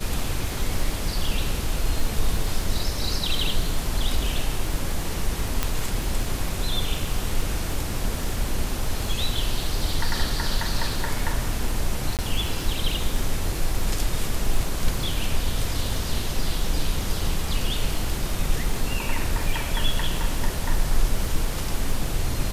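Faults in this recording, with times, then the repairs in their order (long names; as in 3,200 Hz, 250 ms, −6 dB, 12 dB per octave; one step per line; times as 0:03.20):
surface crackle 37 per second −29 dBFS
0:05.63: click −6 dBFS
0:12.17–0:12.19: drop-out 18 ms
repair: click removal
repair the gap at 0:12.17, 18 ms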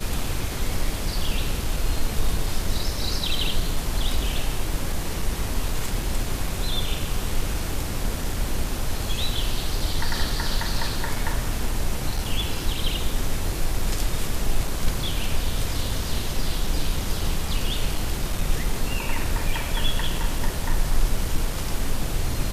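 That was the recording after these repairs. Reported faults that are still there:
none of them is left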